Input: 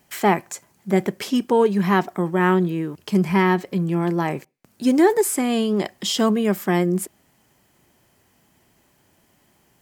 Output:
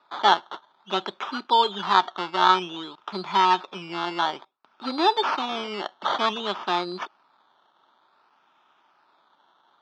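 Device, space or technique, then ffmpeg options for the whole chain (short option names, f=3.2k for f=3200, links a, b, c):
circuit-bent sampling toy: -af "acrusher=samples=14:mix=1:aa=0.000001:lfo=1:lforange=8.4:lforate=0.55,highpass=490,equalizer=f=490:t=q:w=4:g=-7,equalizer=f=910:t=q:w=4:g=9,equalizer=f=1.3k:t=q:w=4:g=10,equalizer=f=2k:t=q:w=4:g=-7,equalizer=f=3.5k:t=q:w=4:g=9,lowpass=f=4.6k:w=0.5412,lowpass=f=4.6k:w=1.3066,volume=-3dB"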